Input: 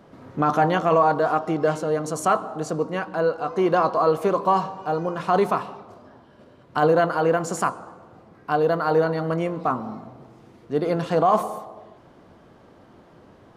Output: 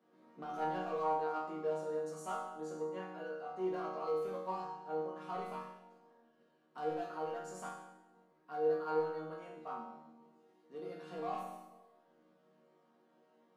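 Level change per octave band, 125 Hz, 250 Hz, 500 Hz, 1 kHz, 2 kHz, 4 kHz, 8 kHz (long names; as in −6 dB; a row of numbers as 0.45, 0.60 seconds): −24.5, −19.5, −16.5, −17.5, −20.5, −19.0, −19.5 decibels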